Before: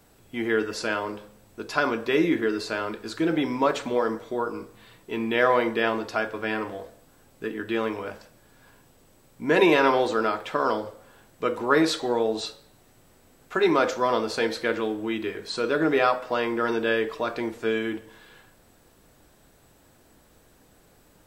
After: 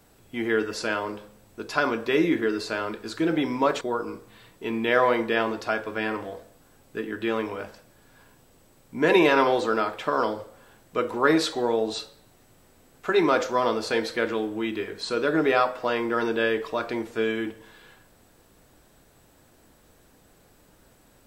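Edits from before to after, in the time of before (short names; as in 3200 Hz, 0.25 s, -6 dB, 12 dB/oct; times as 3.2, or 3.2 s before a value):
3.81–4.28 cut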